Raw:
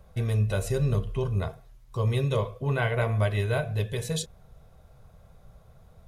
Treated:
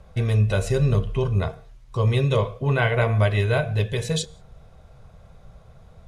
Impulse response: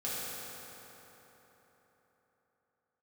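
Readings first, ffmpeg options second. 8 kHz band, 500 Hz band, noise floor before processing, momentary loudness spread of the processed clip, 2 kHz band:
+3.0 dB, +5.5 dB, -55 dBFS, 7 LU, +6.5 dB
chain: -filter_complex "[0:a]lowpass=8.1k,equalizer=f=2.5k:w=1.5:g=2,asplit=2[a][b];[1:a]atrim=start_sample=2205,afade=t=out:st=0.24:d=0.01,atrim=end_sample=11025[c];[b][c]afir=irnorm=-1:irlink=0,volume=-26dB[d];[a][d]amix=inputs=2:normalize=0,volume=5dB"

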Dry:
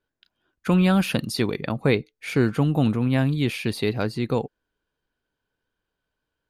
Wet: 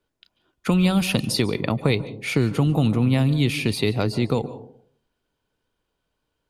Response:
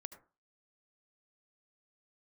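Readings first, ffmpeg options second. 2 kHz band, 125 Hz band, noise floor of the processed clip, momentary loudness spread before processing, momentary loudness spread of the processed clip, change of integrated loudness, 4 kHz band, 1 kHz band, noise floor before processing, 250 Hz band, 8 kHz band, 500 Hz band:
+1.0 dB, +2.5 dB, -78 dBFS, 7 LU, 6 LU, +1.5 dB, +4.5 dB, 0.0 dB, -83 dBFS, +0.5 dB, +5.5 dB, 0.0 dB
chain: -filter_complex "[0:a]equalizer=f=1.6k:w=7.7:g=-11,acrossover=split=120|3000[a][b][c];[b]acompressor=threshold=-24dB:ratio=6[d];[a][d][c]amix=inputs=3:normalize=0,asplit=2[e][f];[1:a]atrim=start_sample=2205,asetrate=22491,aresample=44100[g];[f][g]afir=irnorm=-1:irlink=0,volume=0.5dB[h];[e][h]amix=inputs=2:normalize=0"

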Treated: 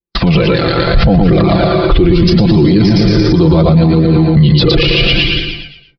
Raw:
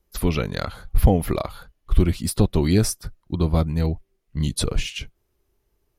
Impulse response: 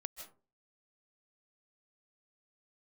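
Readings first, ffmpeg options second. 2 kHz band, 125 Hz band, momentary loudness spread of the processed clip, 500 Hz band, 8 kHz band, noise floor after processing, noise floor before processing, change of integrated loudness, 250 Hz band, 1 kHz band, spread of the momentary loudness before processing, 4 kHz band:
+18.5 dB, +13.5 dB, 4 LU, +15.0 dB, n/a, -44 dBFS, -72 dBFS, +13.5 dB, +16.0 dB, +14.0 dB, 14 LU, +19.0 dB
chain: -filter_complex "[0:a]aresample=11025,aresample=44100,agate=range=-43dB:threshold=-41dB:ratio=16:detection=peak,highpass=f=270:p=1,aecho=1:1:115|230|345|460|575:0.631|0.259|0.106|0.0435|0.0178,acompressor=threshold=-36dB:ratio=2.5,adynamicequalizer=threshold=0.00251:dfrequency=1100:dqfactor=1.1:tfrequency=1100:tqfactor=1.1:attack=5:release=100:ratio=0.375:range=2.5:mode=cutabove:tftype=bell,dynaudnorm=f=210:g=5:m=11.5dB,aecho=1:1:5.9:0.56,asplit=2[a][b];[1:a]atrim=start_sample=2205,afade=t=out:st=0.23:d=0.01,atrim=end_sample=10584,asetrate=23814,aresample=44100[c];[b][c]afir=irnorm=-1:irlink=0,volume=2dB[d];[a][d]amix=inputs=2:normalize=0,flanger=delay=0.5:depth=2.1:regen=-38:speed=0.74:shape=triangular,lowshelf=f=460:g=8.5,alimiter=level_in=19.5dB:limit=-1dB:release=50:level=0:latency=1,volume=-1dB"

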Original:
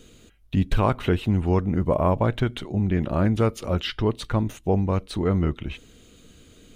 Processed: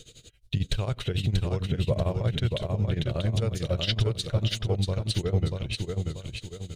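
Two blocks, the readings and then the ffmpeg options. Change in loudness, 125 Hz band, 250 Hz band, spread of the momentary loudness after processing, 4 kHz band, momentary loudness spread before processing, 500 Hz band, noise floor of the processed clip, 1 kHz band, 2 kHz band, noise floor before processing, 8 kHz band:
-4.5 dB, -1.5 dB, -9.0 dB, 5 LU, +4.5 dB, 5 LU, -6.0 dB, -54 dBFS, -12.5 dB, -4.0 dB, -53 dBFS, +4.0 dB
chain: -af "tremolo=f=11:d=0.89,alimiter=limit=-19dB:level=0:latency=1:release=34,equalizer=f=125:t=o:w=1:g=9,equalizer=f=250:t=o:w=1:g=-9,equalizer=f=500:t=o:w=1:g=5,equalizer=f=1k:t=o:w=1:g=-8,equalizer=f=4k:t=o:w=1:g=10,equalizer=f=8k:t=o:w=1:g=7,aecho=1:1:636|1272|1908|2544|3180:0.631|0.246|0.096|0.0374|0.0146"

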